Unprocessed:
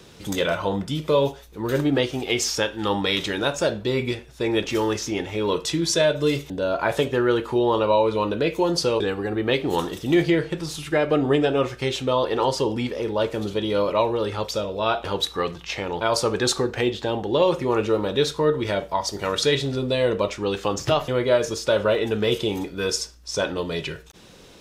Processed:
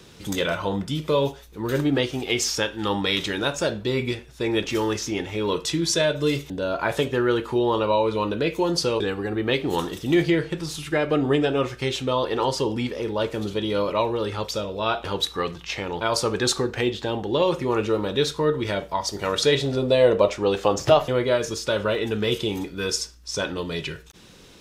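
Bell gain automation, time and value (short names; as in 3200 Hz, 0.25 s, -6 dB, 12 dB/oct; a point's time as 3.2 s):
bell 630 Hz 1.1 oct
19.03 s -3 dB
19.81 s +6.5 dB
20.9 s +6.5 dB
21.42 s -5 dB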